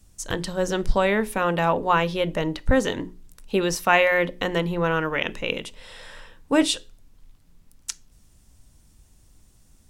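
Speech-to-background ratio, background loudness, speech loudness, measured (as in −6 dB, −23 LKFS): 19.0 dB, −42.5 LKFS, −23.5 LKFS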